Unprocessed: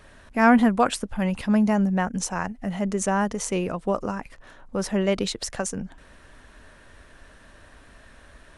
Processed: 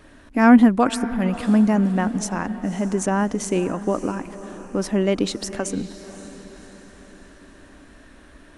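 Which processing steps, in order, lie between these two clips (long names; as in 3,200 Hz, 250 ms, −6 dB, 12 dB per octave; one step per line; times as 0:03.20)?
parametric band 290 Hz +12.5 dB 0.54 octaves
on a send: feedback delay with all-pass diffusion 555 ms, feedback 48%, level −14 dB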